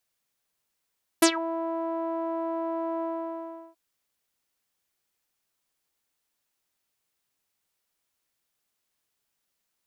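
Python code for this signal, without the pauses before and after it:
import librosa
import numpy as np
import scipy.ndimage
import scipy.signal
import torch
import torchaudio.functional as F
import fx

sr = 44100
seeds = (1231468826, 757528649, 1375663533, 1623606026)

y = fx.sub_voice(sr, note=64, wave='saw', cutoff_hz=840.0, q=6.8, env_oct=4.0, env_s=0.16, attack_ms=7.8, decay_s=0.08, sustain_db=-18, release_s=0.73, note_s=1.8, slope=12)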